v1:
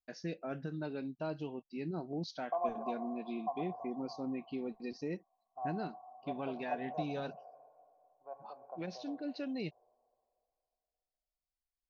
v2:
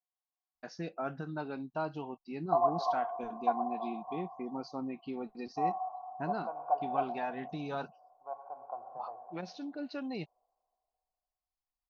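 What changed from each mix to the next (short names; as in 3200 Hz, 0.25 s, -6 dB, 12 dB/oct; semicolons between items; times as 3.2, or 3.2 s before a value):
first voice: entry +0.55 s; master: add band shelf 1000 Hz +9.5 dB 1.2 oct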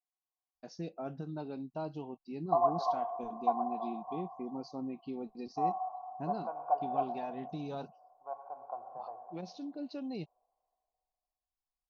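first voice: add bell 1600 Hz -14 dB 1.4 oct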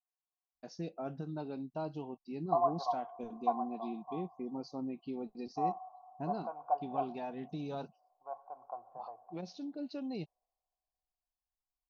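second voice: send -11.5 dB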